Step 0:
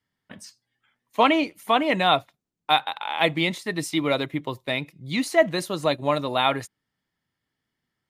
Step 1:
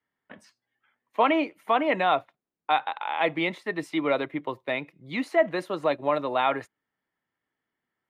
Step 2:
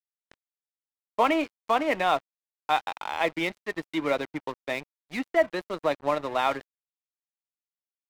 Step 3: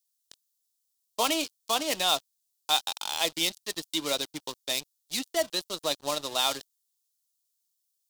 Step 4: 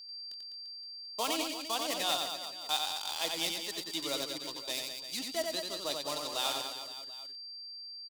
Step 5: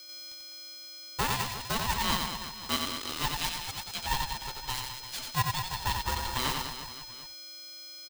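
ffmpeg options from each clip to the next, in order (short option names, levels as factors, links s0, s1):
-filter_complex "[0:a]acrossover=split=270 2700:gain=0.251 1 0.126[s0][s1][s2];[s0][s1][s2]amix=inputs=3:normalize=0,asplit=2[s3][s4];[s4]alimiter=limit=0.188:level=0:latency=1:release=50,volume=1.19[s5];[s3][s5]amix=inputs=2:normalize=0,volume=0.473"
-af "aeval=exprs='sgn(val(0))*max(abs(val(0))-0.0141,0)':c=same"
-af "aexciter=amount=12.1:drive=5:freq=3200,volume=0.501"
-af "aeval=exprs='val(0)+0.0126*sin(2*PI*4700*n/s)':c=same,aecho=1:1:90|202.5|343.1|518.9|738.6:0.631|0.398|0.251|0.158|0.1,volume=0.422"
-af "afreqshift=-72,highpass=f=440:t=q:w=3.9,aeval=exprs='val(0)*sgn(sin(2*PI*450*n/s))':c=same"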